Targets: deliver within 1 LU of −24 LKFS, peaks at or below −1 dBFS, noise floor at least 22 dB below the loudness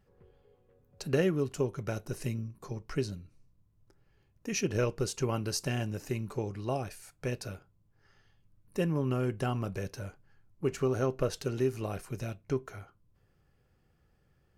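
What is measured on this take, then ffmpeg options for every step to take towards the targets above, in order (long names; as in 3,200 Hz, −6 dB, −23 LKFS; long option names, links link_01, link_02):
integrated loudness −34.0 LKFS; sample peak −17.0 dBFS; target loudness −24.0 LKFS
→ -af "volume=10dB"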